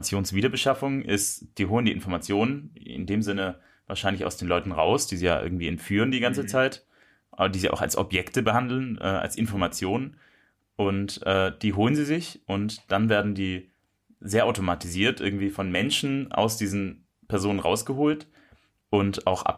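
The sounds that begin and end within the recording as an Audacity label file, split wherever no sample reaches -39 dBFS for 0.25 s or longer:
3.900000	6.770000	sound
7.330000	10.090000	sound
10.790000	13.610000	sound
14.220000	16.930000	sound
17.300000	18.220000	sound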